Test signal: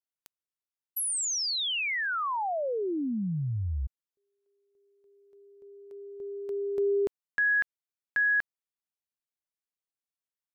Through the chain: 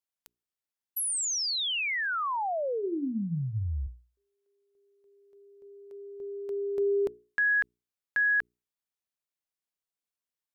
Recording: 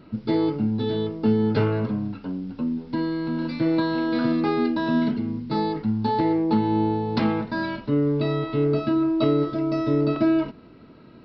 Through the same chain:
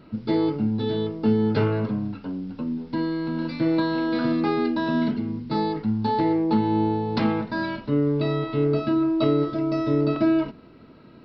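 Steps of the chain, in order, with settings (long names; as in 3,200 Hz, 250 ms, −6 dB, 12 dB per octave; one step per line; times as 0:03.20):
mains-hum notches 60/120/180/240/300/360/420 Hz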